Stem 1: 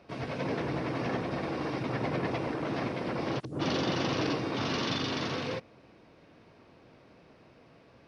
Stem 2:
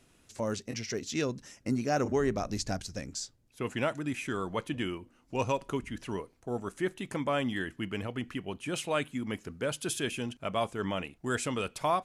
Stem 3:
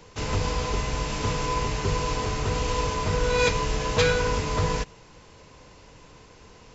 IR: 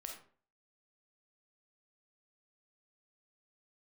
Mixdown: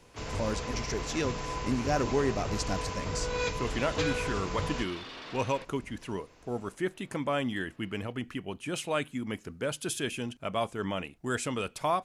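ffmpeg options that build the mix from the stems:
-filter_complex "[0:a]highpass=frequency=1000:poles=1,asoftclip=type=tanh:threshold=-38.5dB,lowpass=4200,adelay=50,volume=-1.5dB[link_01];[1:a]volume=0dB[link_02];[2:a]volume=-9.5dB[link_03];[link_01][link_02][link_03]amix=inputs=3:normalize=0"

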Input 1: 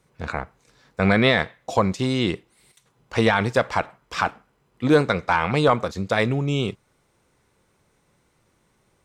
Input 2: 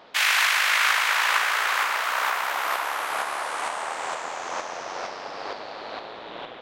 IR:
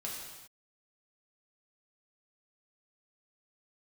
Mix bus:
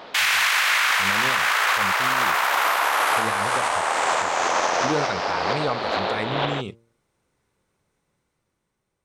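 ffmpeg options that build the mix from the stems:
-filter_complex "[0:a]bandreject=frequency=115.4:width_type=h:width=4,bandreject=frequency=230.8:width_type=h:width=4,bandreject=frequency=346.2:width_type=h:width=4,bandreject=frequency=461.6:width_type=h:width=4,bandreject=frequency=577:width_type=h:width=4,bandreject=frequency=692.4:width_type=h:width=4,bandreject=frequency=807.8:width_type=h:width=4,bandreject=frequency=923.2:width_type=h:width=4,bandreject=frequency=1038.6:width_type=h:width=4,volume=-13.5dB,asplit=2[link_01][link_02];[1:a]acontrast=74,volume=2.5dB[link_03];[link_02]apad=whole_len=291737[link_04];[link_03][link_04]sidechaincompress=threshold=-33dB:ratio=4:attack=12:release=650[link_05];[link_01][link_05]amix=inputs=2:normalize=0,dynaudnorm=framelen=340:gausssize=7:maxgain=6.5dB,alimiter=limit=-11.5dB:level=0:latency=1:release=37"

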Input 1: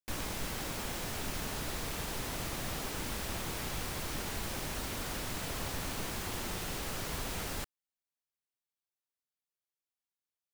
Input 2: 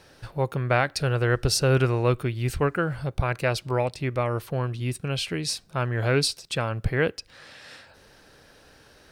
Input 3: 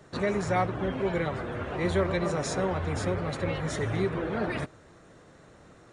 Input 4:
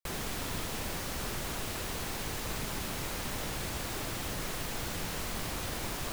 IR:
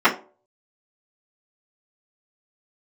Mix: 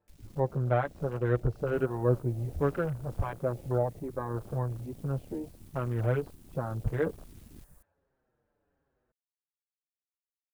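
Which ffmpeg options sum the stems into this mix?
-filter_complex "[0:a]equalizer=frequency=1200:width=1.7:gain=-15,volume=-6.5dB[link_01];[1:a]lowpass=1100,asplit=2[link_02][link_03];[link_03]adelay=6.3,afreqshift=-1.3[link_04];[link_02][link_04]amix=inputs=2:normalize=1,volume=-2dB[link_05];[2:a]equalizer=frequency=280:width_type=o:width=0.77:gain=-13.5,adelay=150,volume=-19dB[link_06];[3:a]firequalizer=gain_entry='entry(1200,0);entry(2000,-15);entry(9000,12)':delay=0.05:min_phase=1,adelay=1700,volume=-16.5dB[link_07];[link_01][link_06]amix=inputs=2:normalize=0,acrusher=bits=6:mix=0:aa=0.000001,alimiter=level_in=14.5dB:limit=-24dB:level=0:latency=1:release=394,volume=-14.5dB,volume=0dB[link_08];[link_05][link_07][link_08]amix=inputs=3:normalize=0,afwtdn=0.00794"

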